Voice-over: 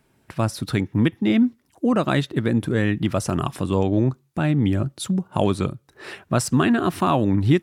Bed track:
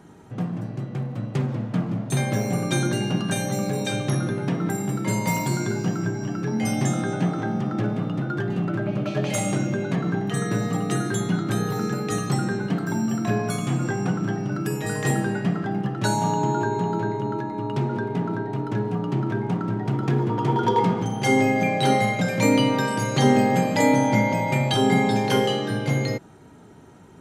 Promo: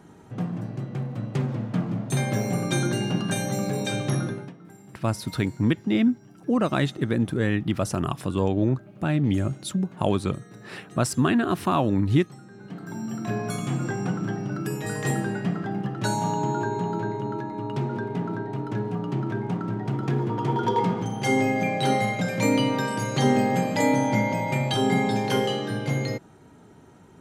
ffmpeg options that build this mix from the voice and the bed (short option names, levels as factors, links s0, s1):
-filter_complex "[0:a]adelay=4650,volume=0.708[s0];[1:a]volume=7.5,afade=t=out:st=4.2:d=0.33:silence=0.0944061,afade=t=in:st=12.51:d=1.06:silence=0.112202[s1];[s0][s1]amix=inputs=2:normalize=0"